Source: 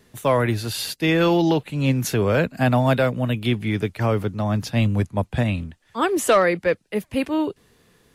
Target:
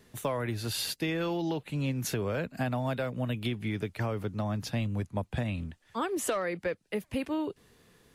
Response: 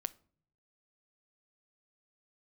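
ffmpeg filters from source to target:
-af "acompressor=threshold=-25dB:ratio=6,volume=-3.5dB"

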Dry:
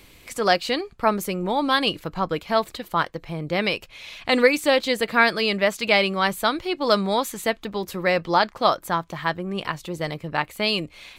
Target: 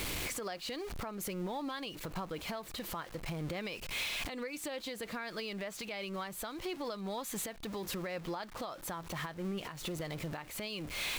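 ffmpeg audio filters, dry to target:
ffmpeg -i in.wav -af "aeval=exprs='val(0)+0.5*0.0266*sgn(val(0))':channel_layout=same,acompressor=threshold=-28dB:ratio=10,alimiter=level_in=4.5dB:limit=-24dB:level=0:latency=1:release=284,volume=-4.5dB,volume=-1.5dB" out.wav

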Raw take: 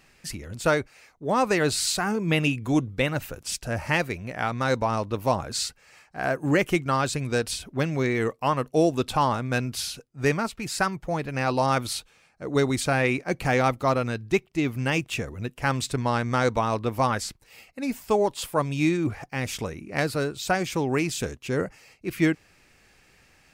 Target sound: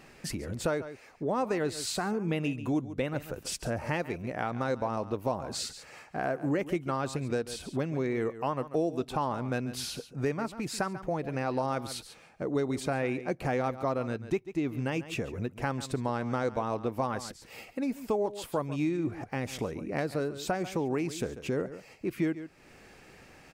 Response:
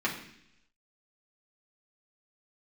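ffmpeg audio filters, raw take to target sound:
-af "equalizer=frequency=390:width=0.32:gain=9.5,aecho=1:1:140:0.15,acompressor=threshold=-35dB:ratio=2.5"

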